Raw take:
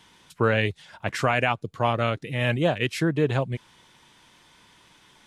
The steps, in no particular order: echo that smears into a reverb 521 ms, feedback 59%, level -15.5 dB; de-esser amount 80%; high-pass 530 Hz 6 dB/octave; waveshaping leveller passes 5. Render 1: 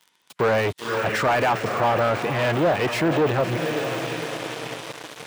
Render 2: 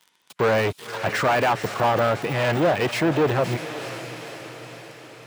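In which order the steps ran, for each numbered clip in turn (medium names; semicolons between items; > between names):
echo that smears into a reverb > waveshaping leveller > high-pass > de-esser; waveshaping leveller > echo that smears into a reverb > de-esser > high-pass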